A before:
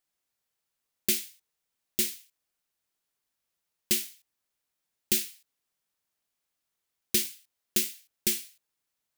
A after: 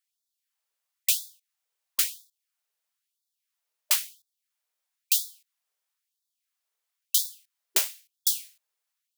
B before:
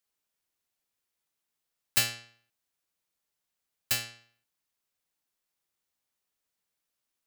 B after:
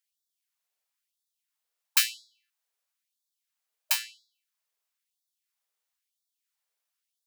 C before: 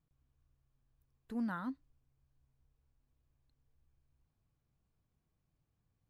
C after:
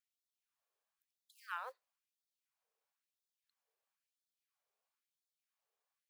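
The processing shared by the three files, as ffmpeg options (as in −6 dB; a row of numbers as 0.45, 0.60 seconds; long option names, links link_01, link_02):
-af "aeval=exprs='0.316*(cos(1*acos(clip(val(0)/0.316,-1,1)))-cos(1*PI/2))+0.01*(cos(3*acos(clip(val(0)/0.316,-1,1)))-cos(3*PI/2))+0.0891*(cos(4*acos(clip(val(0)/0.316,-1,1)))-cos(4*PI/2))+0.00794*(cos(7*acos(clip(val(0)/0.316,-1,1)))-cos(7*PI/2))+0.0158*(cos(8*acos(clip(val(0)/0.316,-1,1)))-cos(8*PI/2))':channel_layout=same,acrusher=bits=9:mode=log:mix=0:aa=0.000001,afftfilt=real='re*gte(b*sr/1024,370*pow(3400/370,0.5+0.5*sin(2*PI*1*pts/sr)))':imag='im*gte(b*sr/1024,370*pow(3400/370,0.5+0.5*sin(2*PI*1*pts/sr)))':win_size=1024:overlap=0.75,volume=2.5dB"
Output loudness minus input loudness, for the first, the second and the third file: +2.5, +2.5, −5.5 LU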